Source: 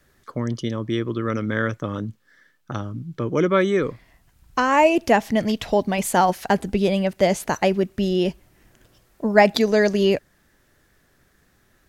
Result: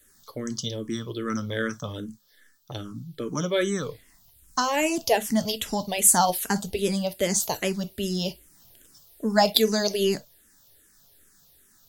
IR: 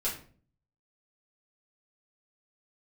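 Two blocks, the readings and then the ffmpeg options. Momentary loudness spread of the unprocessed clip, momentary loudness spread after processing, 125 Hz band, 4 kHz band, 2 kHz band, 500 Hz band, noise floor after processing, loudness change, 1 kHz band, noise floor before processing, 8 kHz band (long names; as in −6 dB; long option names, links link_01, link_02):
13 LU, 16 LU, −6.0 dB, +3.0 dB, −6.5 dB, −6.5 dB, −60 dBFS, −4.0 dB, −5.5 dB, −62 dBFS, +10.5 dB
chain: -filter_complex "[0:a]aexciter=amount=5.2:drive=2.8:freq=3300,asplit=2[link_01][link_02];[1:a]atrim=start_sample=2205,atrim=end_sample=3087,highshelf=frequency=12000:gain=12[link_03];[link_02][link_03]afir=irnorm=-1:irlink=0,volume=-13.5dB[link_04];[link_01][link_04]amix=inputs=2:normalize=0,asplit=2[link_05][link_06];[link_06]afreqshift=-2.5[link_07];[link_05][link_07]amix=inputs=2:normalize=1,volume=-4.5dB"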